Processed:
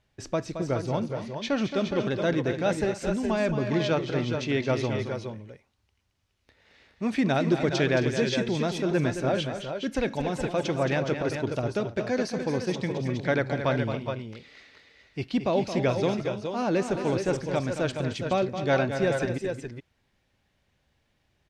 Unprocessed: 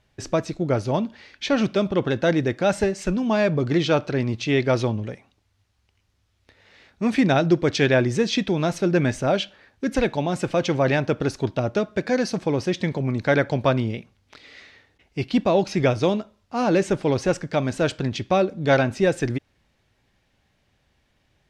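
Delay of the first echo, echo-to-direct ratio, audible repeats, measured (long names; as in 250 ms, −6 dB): 221 ms, −4.5 dB, 3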